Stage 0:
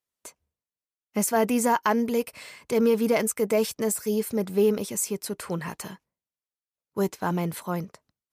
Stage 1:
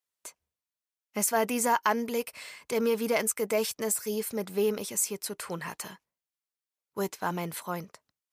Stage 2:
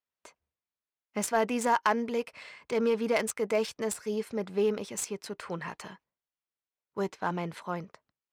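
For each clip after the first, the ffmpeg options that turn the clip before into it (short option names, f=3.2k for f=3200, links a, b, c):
-af "lowshelf=f=480:g=-9.5"
-af "adynamicsmooth=sensitivity=3:basefreq=3.6k"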